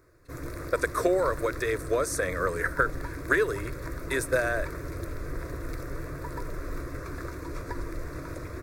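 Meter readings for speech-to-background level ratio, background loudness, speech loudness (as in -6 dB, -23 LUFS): 10.0 dB, -38.0 LUFS, -28.0 LUFS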